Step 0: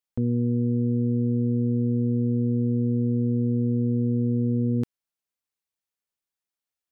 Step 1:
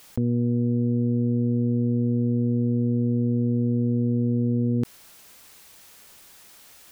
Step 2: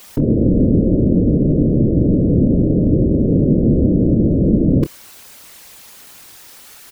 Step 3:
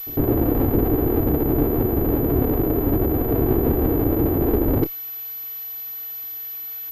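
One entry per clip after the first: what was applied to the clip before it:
envelope flattener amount 100%
random phases in short frames; double-tracking delay 27 ms −12 dB; level +9 dB
lower of the sound and its delayed copy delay 2.7 ms; backwards echo 103 ms −18.5 dB; switching amplifier with a slow clock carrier 12,000 Hz; level −3.5 dB

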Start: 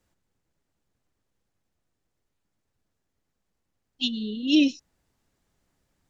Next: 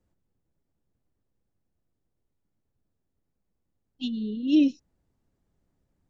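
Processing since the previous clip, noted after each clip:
tilt shelving filter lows +7 dB, about 850 Hz
level −5.5 dB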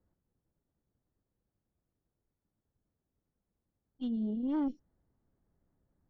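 tube saturation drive 22 dB, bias 0.5
Savitzky-Golay smoothing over 41 samples
brickwall limiter −27.5 dBFS, peak gain reduction 7 dB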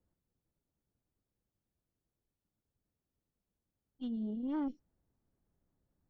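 dynamic equaliser 1,600 Hz, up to +4 dB, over −51 dBFS, Q 0.78
level −4 dB

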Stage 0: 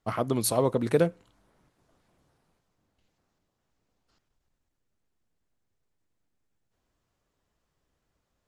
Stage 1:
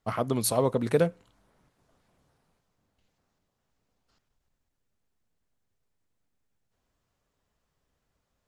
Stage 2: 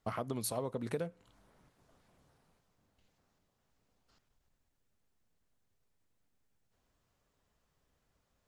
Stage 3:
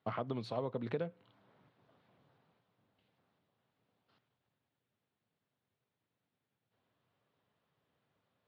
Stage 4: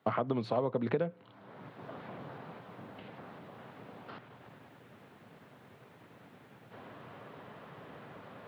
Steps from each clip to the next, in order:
parametric band 330 Hz −5.5 dB 0.21 octaves
downward compressor 5 to 1, threshold −35 dBFS, peak gain reduction 15 dB
Chebyshev band-pass filter 110–3,700 Hz, order 3
multiband upward and downward compressor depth 70%; level +11.5 dB

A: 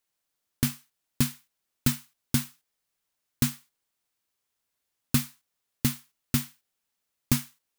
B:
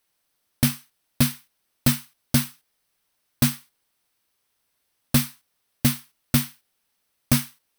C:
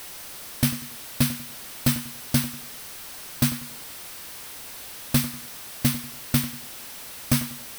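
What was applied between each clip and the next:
in parallel at −3.5 dB: sine wavefolder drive 9 dB, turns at −7.5 dBFS; on the sum: notch filter 7,000 Hz, Q 5.4; level −3.5 dB
converter with a step at zero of −31 dBFS; feedback echo with a low-pass in the loop 96 ms, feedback 35%, level −13 dB; level −2.5 dB

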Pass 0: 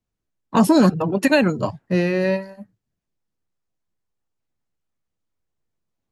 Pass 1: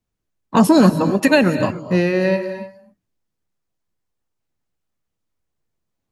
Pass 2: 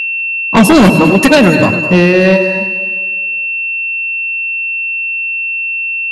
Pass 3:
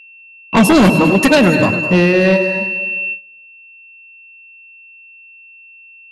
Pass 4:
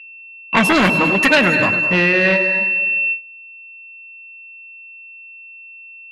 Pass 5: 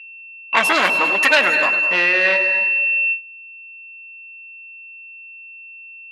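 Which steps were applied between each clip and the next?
reverb whose tail is shaped and stops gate 320 ms rising, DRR 11 dB; level +2.5 dB
steady tone 2,700 Hz −24 dBFS; delay that swaps between a low-pass and a high-pass 101 ms, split 860 Hz, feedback 67%, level −12 dB; sine wavefolder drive 7 dB, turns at −0.5 dBFS; level −1 dB
noise gate with hold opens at −13 dBFS; level −3.5 dB
parametric band 2,000 Hz +13 dB 2 octaves; level −8 dB
high-pass filter 580 Hz 12 dB per octave

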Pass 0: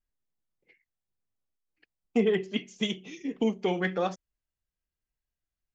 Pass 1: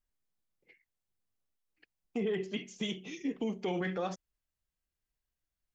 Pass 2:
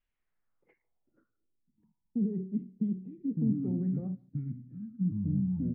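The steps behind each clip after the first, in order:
brickwall limiter −25.5 dBFS, peak gain reduction 11.5 dB
far-end echo of a speakerphone 150 ms, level −23 dB; delay with pitch and tempo change per echo 137 ms, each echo −7 semitones, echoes 2; low-pass filter sweep 2,700 Hz → 210 Hz, 0:00.05–0:01.88

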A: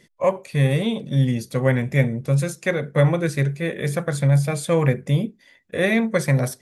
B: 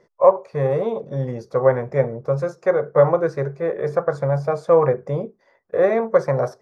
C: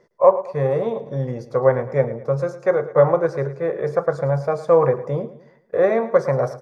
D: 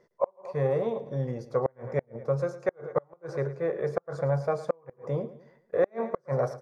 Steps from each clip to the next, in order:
drawn EQ curve 120 Hz 0 dB, 270 Hz −3 dB, 420 Hz +13 dB, 1,200 Hz +14 dB, 1,900 Hz −2 dB, 3,200 Hz −14 dB, 5,400 Hz −2 dB, 9,000 Hz −20 dB; level −6.5 dB
repeating echo 109 ms, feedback 42%, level −15 dB
gate with flip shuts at −7 dBFS, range −37 dB; level −6 dB

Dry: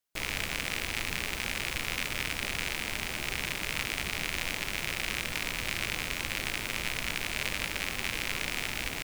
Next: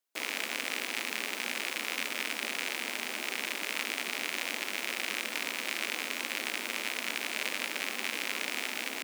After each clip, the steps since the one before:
elliptic high-pass filter 230 Hz, stop band 60 dB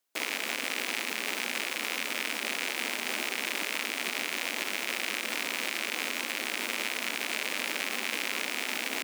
brickwall limiter −20 dBFS, peak gain reduction 6 dB
level +5 dB

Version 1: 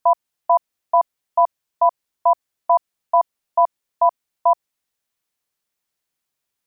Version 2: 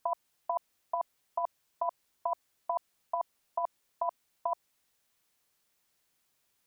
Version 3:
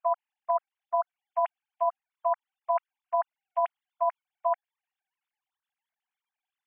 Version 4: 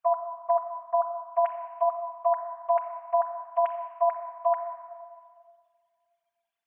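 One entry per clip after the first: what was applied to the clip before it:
compressor whose output falls as the input rises −21 dBFS, ratio −0.5; level −6 dB
three sine waves on the formant tracks; level +6.5 dB
rectangular room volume 3,700 cubic metres, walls mixed, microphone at 1.7 metres

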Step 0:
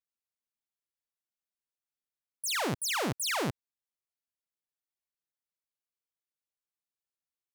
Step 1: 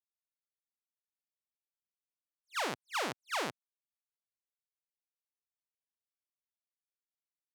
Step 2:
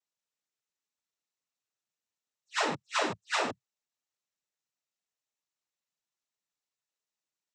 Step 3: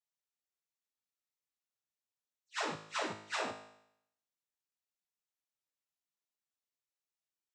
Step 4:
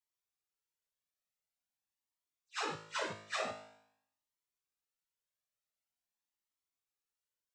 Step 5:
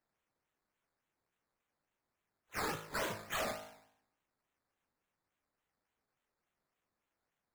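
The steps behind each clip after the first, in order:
noise gate −31 dBFS, range −20 dB; meter weighting curve A; level that may rise only so fast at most 540 dB per second
cochlear-implant simulation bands 12; level +5.5 dB
tuned comb filter 53 Hz, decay 0.75 s, harmonics all, mix 70%
flanger whose copies keep moving one way rising 0.46 Hz; level +3.5 dB
sample-and-hold swept by an LFO 12×, swing 60% 3.5 Hz; soft clipping −36.5 dBFS, distortion −11 dB; level +4.5 dB

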